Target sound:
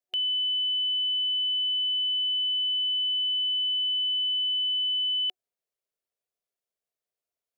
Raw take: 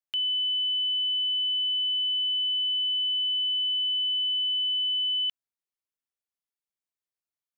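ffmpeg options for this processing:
-af "superequalizer=7b=3.16:8b=3.16"

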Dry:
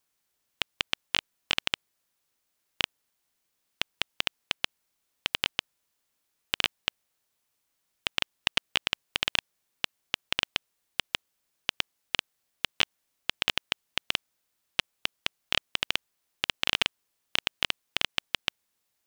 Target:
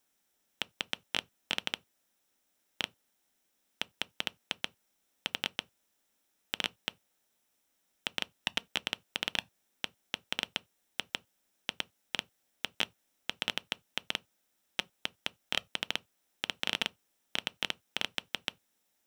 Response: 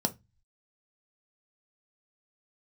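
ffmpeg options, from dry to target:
-filter_complex "[0:a]alimiter=limit=-11.5dB:level=0:latency=1,asplit=2[a][b];[1:a]atrim=start_sample=2205,atrim=end_sample=4410[c];[b][c]afir=irnorm=-1:irlink=0,volume=-14dB[d];[a][d]amix=inputs=2:normalize=0"

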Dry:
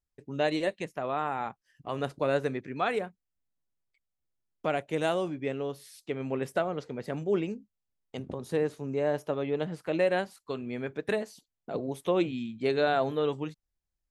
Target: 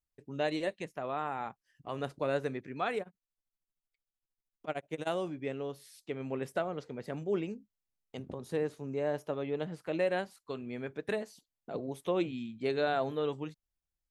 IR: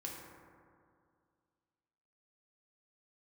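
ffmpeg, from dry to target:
-filter_complex "[0:a]asettb=1/sr,asplit=3[a][b][c];[a]atrim=end=3.014[d];[b]atrim=start=3.01:end=5.07,asetpts=PTS-STARTPTS,afade=t=in:d=0.004:c=qsin,afade=t=out:st=2.056:d=0.004:c=qsin,tremolo=f=13:d=0.96[e];[c]atrim=start=5.066[f];[d][e]acrossfade=d=0.004:c1=hsin:c2=qsin[g];[g][f]acrossfade=d=0.004:c1=qsin:c2=hsin,volume=-4.5dB"

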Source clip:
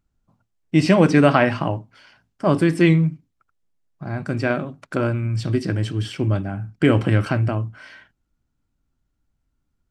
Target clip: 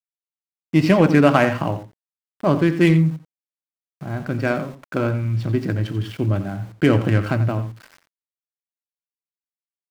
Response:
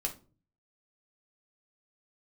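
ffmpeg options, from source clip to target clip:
-filter_complex "[0:a]adynamicsmooth=sensitivity=3.5:basefreq=2k,aeval=exprs='val(0)*gte(abs(val(0)),0.01)':c=same,asplit=2[a][b];[b]adelay=87.46,volume=-12dB,highshelf=f=4k:g=-1.97[c];[a][c]amix=inputs=2:normalize=0"

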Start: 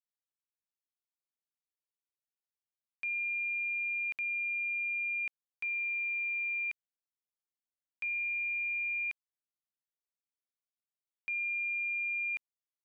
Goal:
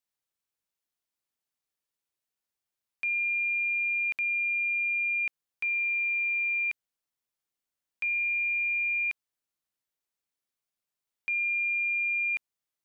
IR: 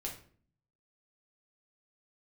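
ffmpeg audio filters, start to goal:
-af "acontrast=46"

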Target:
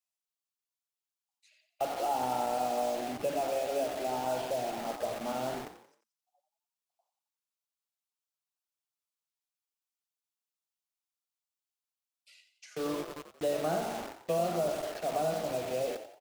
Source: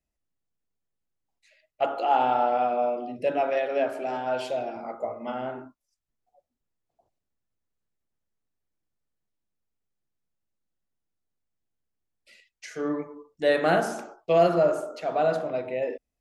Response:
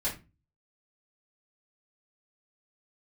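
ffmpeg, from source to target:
-filter_complex "[0:a]equalizer=f=1.8k:t=o:w=0.62:g=-13.5,acrossover=split=200|490|1800[a][b][c][d];[a]acompressor=threshold=-42dB:ratio=4[e];[b]acompressor=threshold=-43dB:ratio=4[f];[c]acompressor=threshold=-32dB:ratio=4[g];[d]acompressor=threshold=-54dB:ratio=4[h];[e][f][g][h]amix=inputs=4:normalize=0,acrossover=split=890[i][j];[i]acrusher=bits=6:mix=0:aa=0.000001[k];[k][j]amix=inputs=2:normalize=0,asplit=5[l][m][n][o][p];[m]adelay=89,afreqshift=51,volume=-10.5dB[q];[n]adelay=178,afreqshift=102,volume=-18dB[r];[o]adelay=267,afreqshift=153,volume=-25.6dB[s];[p]adelay=356,afreqshift=204,volume=-33.1dB[t];[l][q][r][s][t]amix=inputs=5:normalize=0"

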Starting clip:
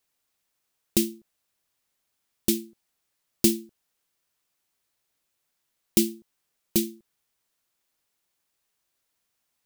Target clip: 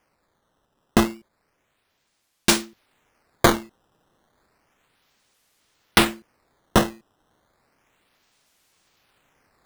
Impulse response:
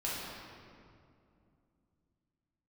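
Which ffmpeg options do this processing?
-af "asetnsamples=n=441:p=0,asendcmd='2.49 highshelf g 10.5',highshelf=f=8.5k:g=3,dynaudnorm=f=590:g=7:m=11.5dB,acrusher=samples=11:mix=1:aa=0.000001:lfo=1:lforange=17.6:lforate=0.32,alimiter=level_in=7.5dB:limit=-1dB:release=50:level=0:latency=1,volume=-2dB"

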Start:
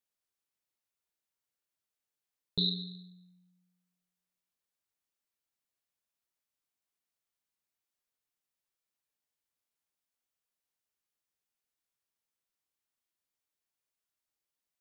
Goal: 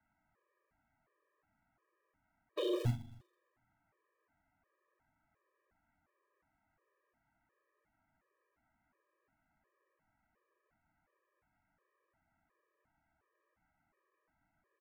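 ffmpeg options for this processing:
-filter_complex "[0:a]highpass=f=190:t=q:w=0.5412,highpass=f=190:t=q:w=1.307,lowpass=f=2.2k:t=q:w=0.5176,lowpass=f=2.2k:t=q:w=0.7071,lowpass=f=2.2k:t=q:w=1.932,afreqshift=-300,aresample=8000,aeval=exprs='0.0299*sin(PI/2*5.62*val(0)/0.0299)':c=same,aresample=44100,asplit=2[a][b];[b]adelay=154,lowpass=f=1.1k:p=1,volume=-4dB,asplit=2[c][d];[d]adelay=154,lowpass=f=1.1k:p=1,volume=0.18,asplit=2[e][f];[f]adelay=154,lowpass=f=1.1k:p=1,volume=0.18[g];[a][c][e][g]amix=inputs=4:normalize=0,aeval=exprs='0.0501*(cos(1*acos(clip(val(0)/0.0501,-1,1)))-cos(1*PI/2))+0.00891*(cos(2*acos(clip(val(0)/0.0501,-1,1)))-cos(2*PI/2))+0.00178*(cos(5*acos(clip(val(0)/0.0501,-1,1)))-cos(5*PI/2))+0.001*(cos(7*acos(clip(val(0)/0.0501,-1,1)))-cos(7*PI/2))':c=same,acrossover=split=290[h][i];[h]acrusher=bits=3:mode=log:mix=0:aa=0.000001[j];[j][i]amix=inputs=2:normalize=0,afftfilt=real='re*gt(sin(2*PI*1.4*pts/sr)*(1-2*mod(floor(b*sr/1024/320),2)),0)':imag='im*gt(sin(2*PI*1.4*pts/sr)*(1-2*mod(floor(b*sr/1024/320),2)),0)':win_size=1024:overlap=0.75,volume=2dB"

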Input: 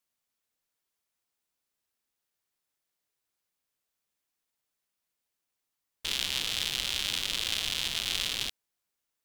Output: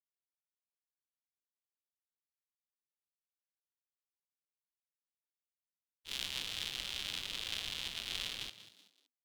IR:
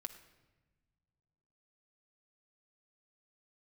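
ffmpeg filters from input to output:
-filter_complex "[0:a]agate=range=-33dB:threshold=-26dB:ratio=3:detection=peak,asplit=4[a][b][c][d];[b]adelay=189,afreqshift=83,volume=-14dB[e];[c]adelay=378,afreqshift=166,volume=-22.9dB[f];[d]adelay=567,afreqshift=249,volume=-31.7dB[g];[a][e][f][g]amix=inputs=4:normalize=0,adynamicequalizer=threshold=0.00447:dfrequency=5100:dqfactor=0.7:tfrequency=5100:tqfactor=0.7:attack=5:release=100:ratio=0.375:range=2:mode=cutabove:tftype=highshelf,volume=-4.5dB"

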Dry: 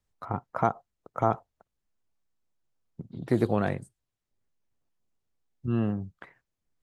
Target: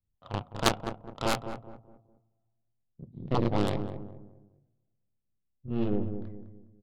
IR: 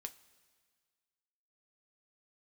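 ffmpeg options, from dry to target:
-filter_complex "[0:a]lowpass=6.4k,equalizer=f=400:w=4.2:g=-5.5,asplit=2[a][b];[1:a]atrim=start_sample=2205,adelay=30[c];[b][c]afir=irnorm=-1:irlink=0,volume=9dB[d];[a][d]amix=inputs=2:normalize=0,aphaser=in_gain=1:out_gain=1:delay=2.1:decay=0.31:speed=1.5:type=triangular,adynamicsmooth=sensitivity=0.5:basefreq=610,highshelf=f=2.4k:t=q:w=1.5:g=11.5,aeval=exprs='0.75*(cos(1*acos(clip(val(0)/0.75,-1,1)))-cos(1*PI/2))+0.376*(cos(3*acos(clip(val(0)/0.75,-1,1)))-cos(3*PI/2))+0.0944*(cos(6*acos(clip(val(0)/0.75,-1,1)))-cos(6*PI/2))':c=same,asplit=2[e][f];[f]adelay=207,lowpass=f=810:p=1,volume=-7.5dB,asplit=2[g][h];[h]adelay=207,lowpass=f=810:p=1,volume=0.39,asplit=2[i][j];[j]adelay=207,lowpass=f=810:p=1,volume=0.39,asplit=2[k][l];[l]adelay=207,lowpass=f=810:p=1,volume=0.39[m];[e][g][i][k][m]amix=inputs=5:normalize=0,volume=-2.5dB"

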